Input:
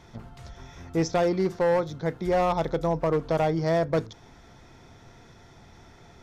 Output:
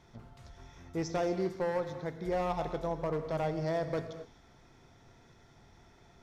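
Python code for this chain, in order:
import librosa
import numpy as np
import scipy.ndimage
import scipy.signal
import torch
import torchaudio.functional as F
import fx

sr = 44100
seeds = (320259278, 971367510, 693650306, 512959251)

y = fx.rev_gated(x, sr, seeds[0], gate_ms=280, shape='flat', drr_db=8.0)
y = F.gain(torch.from_numpy(y), -9.0).numpy()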